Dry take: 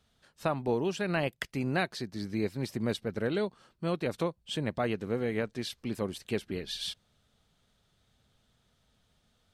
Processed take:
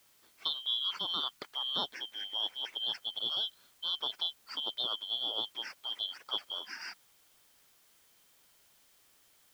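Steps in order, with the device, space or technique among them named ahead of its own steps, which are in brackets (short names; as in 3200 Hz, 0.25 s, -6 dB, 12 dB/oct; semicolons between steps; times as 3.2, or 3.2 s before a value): HPF 150 Hz 24 dB/oct; split-band scrambled radio (four-band scrambler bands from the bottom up 2413; BPF 390–3000 Hz; white noise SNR 27 dB); 1.09–1.57 bell 540 Hz -10.5 dB 0.82 oct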